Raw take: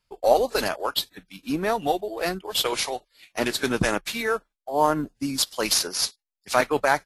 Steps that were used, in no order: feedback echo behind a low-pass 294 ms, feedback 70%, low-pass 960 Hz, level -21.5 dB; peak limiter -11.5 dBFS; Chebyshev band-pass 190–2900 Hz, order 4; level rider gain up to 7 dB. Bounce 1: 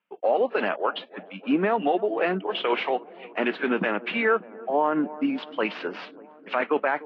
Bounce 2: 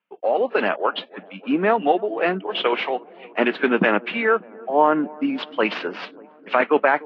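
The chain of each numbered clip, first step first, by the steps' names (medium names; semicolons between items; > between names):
level rider > feedback echo behind a low-pass > peak limiter > Chebyshev band-pass; Chebyshev band-pass > peak limiter > level rider > feedback echo behind a low-pass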